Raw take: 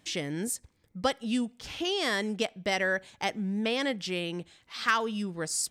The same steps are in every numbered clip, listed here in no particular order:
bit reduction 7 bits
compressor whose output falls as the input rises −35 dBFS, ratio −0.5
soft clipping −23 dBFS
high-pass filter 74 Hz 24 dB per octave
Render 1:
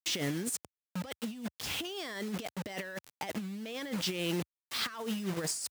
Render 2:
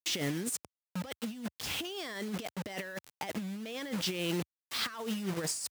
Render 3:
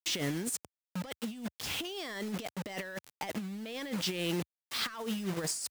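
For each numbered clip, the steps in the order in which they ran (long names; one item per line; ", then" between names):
bit reduction, then soft clipping, then compressor whose output falls as the input rises, then high-pass filter
soft clipping, then bit reduction, then compressor whose output falls as the input rises, then high-pass filter
bit reduction, then high-pass filter, then soft clipping, then compressor whose output falls as the input rises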